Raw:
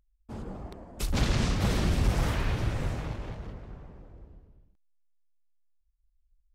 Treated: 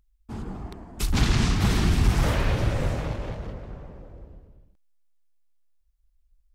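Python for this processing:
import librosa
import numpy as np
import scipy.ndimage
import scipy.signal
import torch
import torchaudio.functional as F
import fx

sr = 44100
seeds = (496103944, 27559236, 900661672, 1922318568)

y = fx.peak_eq(x, sr, hz=550.0, db=fx.steps((0.0, -12.0), (2.24, 5.5)), octaves=0.4)
y = F.gain(torch.from_numpy(y), 5.0).numpy()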